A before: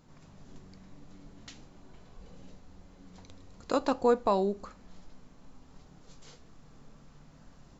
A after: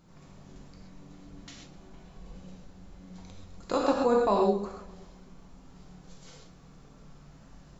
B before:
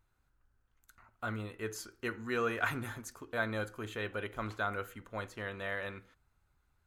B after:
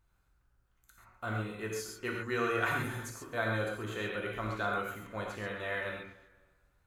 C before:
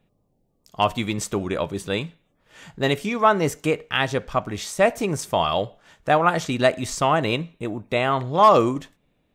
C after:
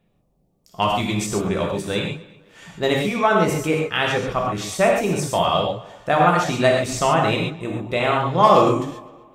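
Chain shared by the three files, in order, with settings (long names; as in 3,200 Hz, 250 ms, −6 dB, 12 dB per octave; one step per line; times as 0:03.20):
tape delay 254 ms, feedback 35%, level −20 dB, low-pass 4,100 Hz
reverb whose tail is shaped and stops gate 160 ms flat, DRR −1 dB
level −1 dB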